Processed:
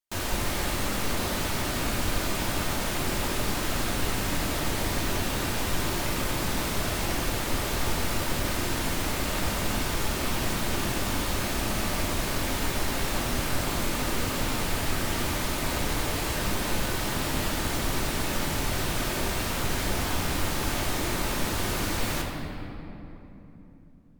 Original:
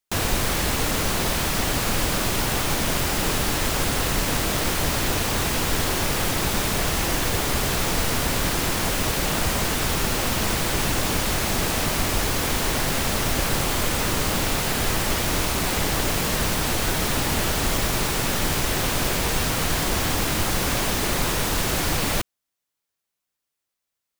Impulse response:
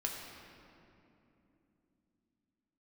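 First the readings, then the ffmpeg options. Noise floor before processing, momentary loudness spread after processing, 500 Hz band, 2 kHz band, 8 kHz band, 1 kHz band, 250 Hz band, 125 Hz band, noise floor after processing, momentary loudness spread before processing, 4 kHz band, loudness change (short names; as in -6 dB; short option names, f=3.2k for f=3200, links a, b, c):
-83 dBFS, 0 LU, -5.0 dB, -5.5 dB, -7.0 dB, -5.0 dB, -3.5 dB, -4.5 dB, -42 dBFS, 0 LU, -6.0 dB, -6.0 dB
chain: -filter_complex "[1:a]atrim=start_sample=2205,asetrate=39249,aresample=44100[a];[0:a][a]afir=irnorm=-1:irlink=0,volume=-8dB"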